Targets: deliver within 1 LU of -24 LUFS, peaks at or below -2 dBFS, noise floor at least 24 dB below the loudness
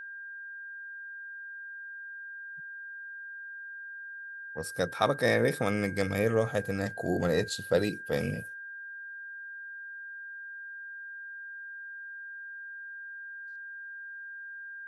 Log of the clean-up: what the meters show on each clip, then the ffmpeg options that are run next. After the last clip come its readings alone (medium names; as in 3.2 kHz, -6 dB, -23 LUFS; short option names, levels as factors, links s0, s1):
steady tone 1.6 kHz; tone level -40 dBFS; loudness -34.5 LUFS; peak level -10.5 dBFS; loudness target -24.0 LUFS
-> -af "bandreject=f=1600:w=30"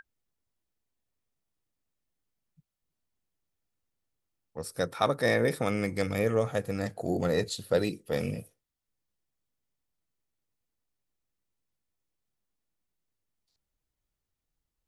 steady tone not found; loudness -29.5 LUFS; peak level -11.0 dBFS; loudness target -24.0 LUFS
-> -af "volume=1.88"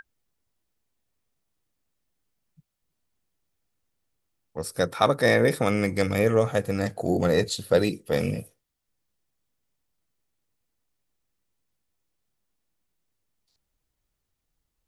loudness -24.0 LUFS; peak level -5.5 dBFS; noise floor -81 dBFS